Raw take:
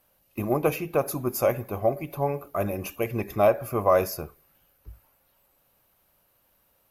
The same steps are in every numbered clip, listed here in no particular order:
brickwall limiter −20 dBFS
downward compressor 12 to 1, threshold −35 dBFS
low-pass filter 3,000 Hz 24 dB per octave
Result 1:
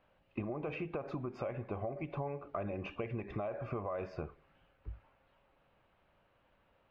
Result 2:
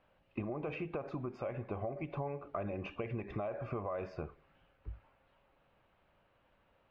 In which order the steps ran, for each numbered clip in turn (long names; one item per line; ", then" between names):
low-pass filter, then brickwall limiter, then downward compressor
brickwall limiter, then downward compressor, then low-pass filter